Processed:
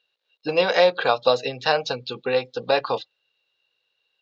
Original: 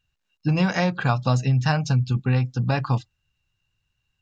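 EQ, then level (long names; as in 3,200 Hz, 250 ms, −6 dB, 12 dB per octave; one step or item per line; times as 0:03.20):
high-pass with resonance 480 Hz, resonance Q 4.9
low-pass with resonance 3,900 Hz, resonance Q 4
0.0 dB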